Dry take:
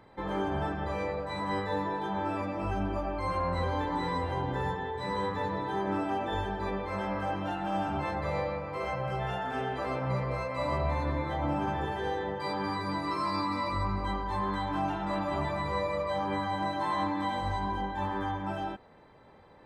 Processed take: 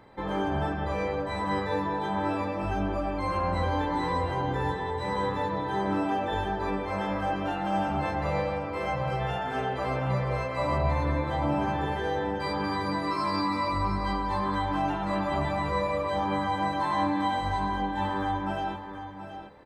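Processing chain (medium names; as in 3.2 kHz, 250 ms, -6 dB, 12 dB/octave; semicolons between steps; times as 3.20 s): doubling 14 ms -13.5 dB; delay 728 ms -10 dB; trim +2.5 dB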